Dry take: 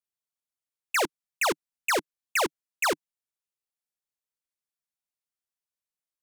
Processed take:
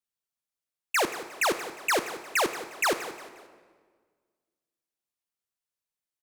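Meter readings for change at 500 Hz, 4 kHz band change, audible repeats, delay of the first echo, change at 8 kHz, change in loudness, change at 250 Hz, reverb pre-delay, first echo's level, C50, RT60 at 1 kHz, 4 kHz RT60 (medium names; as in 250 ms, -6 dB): +0.5 dB, +0.5 dB, 3, 178 ms, +0.5 dB, +0.5 dB, +0.5 dB, 27 ms, -15.0 dB, 10.0 dB, 1.5 s, 1.2 s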